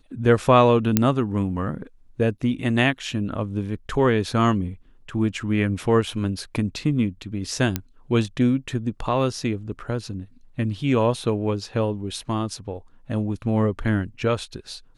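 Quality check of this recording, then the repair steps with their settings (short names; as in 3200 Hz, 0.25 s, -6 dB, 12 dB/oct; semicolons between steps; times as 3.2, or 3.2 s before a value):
0.97 pop -2 dBFS
7.76 pop -8 dBFS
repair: de-click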